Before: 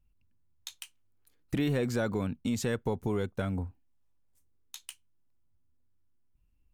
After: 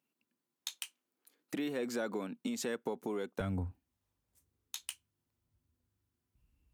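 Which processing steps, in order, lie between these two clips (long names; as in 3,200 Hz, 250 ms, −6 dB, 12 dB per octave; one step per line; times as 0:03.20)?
downward compressor, threshold −34 dBFS, peak gain reduction 9 dB
high-pass filter 230 Hz 24 dB per octave, from 0:03.40 46 Hz
level +2.5 dB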